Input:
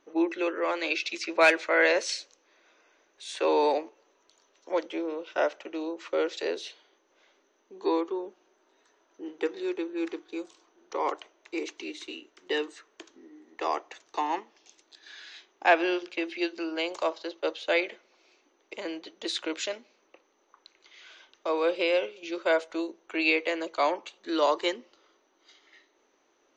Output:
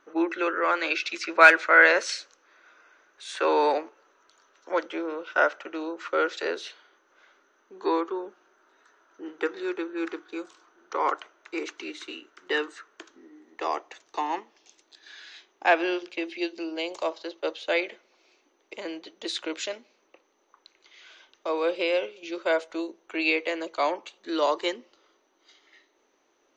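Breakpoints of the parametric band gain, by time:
parametric band 1,400 Hz 0.7 octaves
0:12.70 +12.5 dB
0:13.76 +1 dB
0:15.89 +1 dB
0:16.76 −10 dB
0:17.22 0 dB

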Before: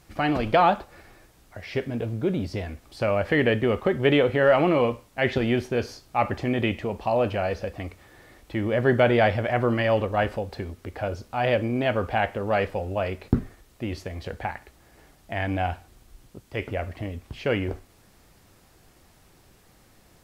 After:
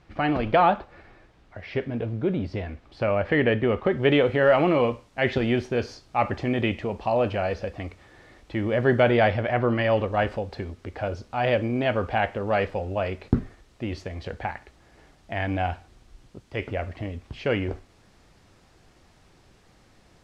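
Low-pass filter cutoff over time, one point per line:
0:03.78 3,300 Hz
0:04.24 6,500 Hz
0:08.99 6,500 Hz
0:09.68 3,800 Hz
0:10.13 6,400 Hz

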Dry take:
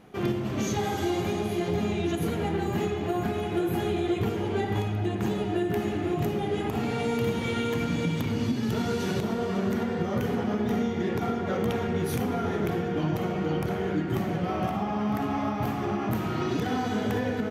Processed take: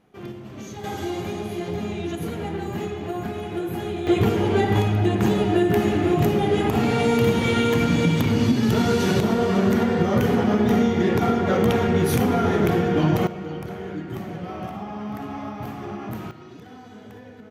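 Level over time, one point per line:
−8.5 dB
from 0:00.84 −1 dB
from 0:04.07 +8 dB
from 0:13.27 −4 dB
from 0:16.31 −15 dB

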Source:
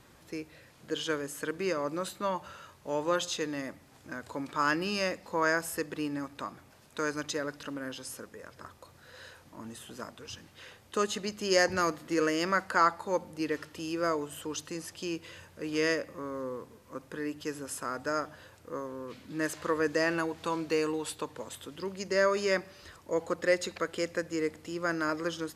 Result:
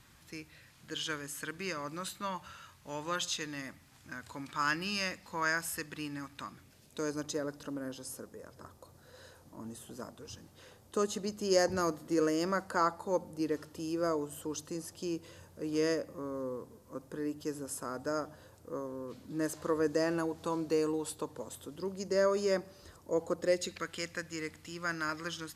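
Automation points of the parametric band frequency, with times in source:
parametric band −11.5 dB 1.8 octaves
0:06.37 480 Hz
0:07.24 2,300 Hz
0:23.39 2,300 Hz
0:23.93 460 Hz

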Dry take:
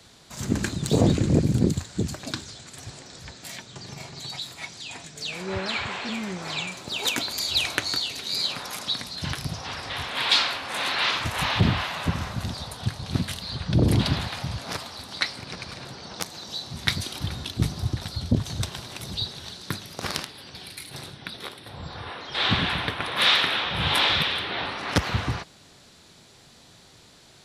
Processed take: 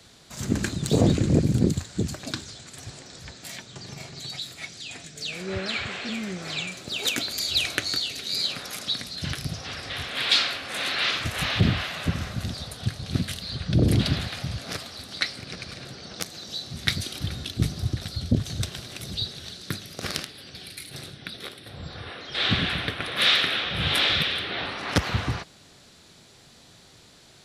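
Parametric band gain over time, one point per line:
parametric band 940 Hz 0.47 octaves
0:03.87 −3.5 dB
0:04.38 −12 dB
0:24.33 −12 dB
0:24.87 −2.5 dB

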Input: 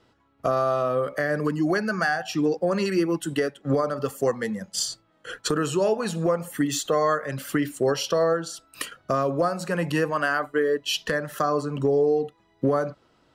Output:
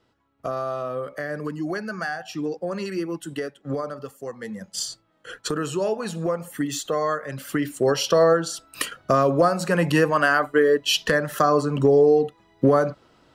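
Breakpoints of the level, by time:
0:03.91 −5 dB
0:04.20 −12.5 dB
0:04.61 −2 dB
0:07.38 −2 dB
0:08.19 +5 dB

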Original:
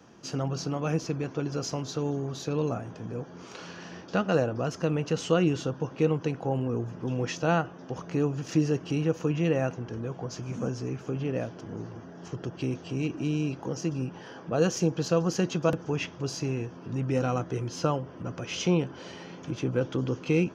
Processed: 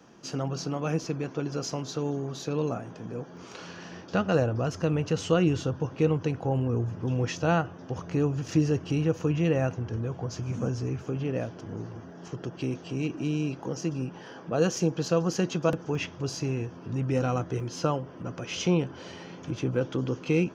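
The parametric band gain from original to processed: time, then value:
parametric band 93 Hz 0.49 octaves
−7.5 dB
from 0:03.37 +3 dB
from 0:04.12 +15 dB
from 0:11.04 +5 dB
from 0:12.11 −4.5 dB
from 0:15.95 +6 dB
from 0:17.60 −3.5 dB
from 0:18.57 +5.5 dB
from 0:19.75 −2.5 dB

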